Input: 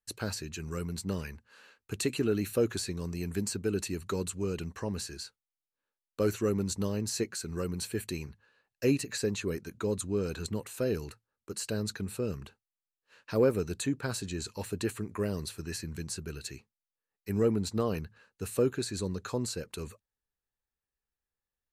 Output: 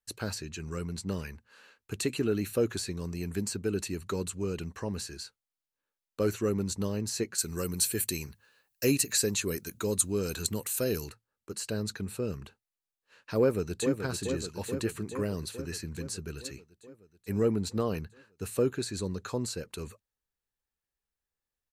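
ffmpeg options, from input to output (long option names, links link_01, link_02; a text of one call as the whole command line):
ffmpeg -i in.wav -filter_complex "[0:a]asettb=1/sr,asplit=3[link_01][link_02][link_03];[link_01]atrim=end=0.384[link_04];[link_02]atrim=start=0.38:end=1.1,asetpts=PTS-STARTPTS,afade=type=in:duration=0.004:curve=qsin,afade=type=out:start_time=0.716:duration=0.004:curve=qsin,lowpass=10000[link_05];[link_03]atrim=start=1.096[link_06];[link_04][link_05]acrossfade=duration=0.004:curve1=hsin:curve2=qsin[link_07];[link_07][link_06]acrossfade=duration=0.004:curve1=qsin:curve2=hsin,asettb=1/sr,asplit=3[link_08][link_09][link_10];[link_08]atrim=end=7.384[link_11];[link_09]atrim=start=7.38:end=11.09,asetpts=PTS-STARTPTS,afade=type=in:duration=0.004:curve=qsin,afade=type=out:start_time=3.706:duration=0.004:curve=qsin,aemphasis=mode=production:type=75kf[link_12];[link_10]atrim=start=11.086[link_13];[link_11][link_12]acrossfade=duration=0.004:curve1=hsin:curve2=qsin[link_14];[link_14][link_13]acrossfade=duration=0.004:curve1=qsin:curve2=hsin,asplit=2[link_15][link_16];[link_16]afade=type=in:start_time=13.39:duration=0.01,afade=type=out:start_time=13.99:duration=0.01,aecho=0:1:430|860|1290|1720|2150|2580|3010|3440|3870|4300|4730:0.446684|0.312679|0.218875|0.153212|0.107249|0.0750741|0.0525519|0.0367863|0.0257504|0.0180253|0.0126177[link_17];[link_15][link_17]amix=inputs=2:normalize=0" out.wav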